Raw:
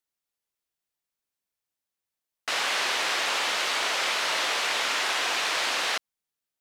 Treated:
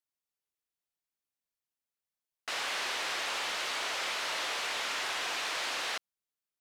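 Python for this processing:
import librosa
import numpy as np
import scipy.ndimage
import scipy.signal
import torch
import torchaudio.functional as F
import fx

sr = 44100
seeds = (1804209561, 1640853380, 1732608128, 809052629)

y = 10.0 ** (-19.0 / 20.0) * np.tanh(x / 10.0 ** (-19.0 / 20.0))
y = y * librosa.db_to_amplitude(-6.5)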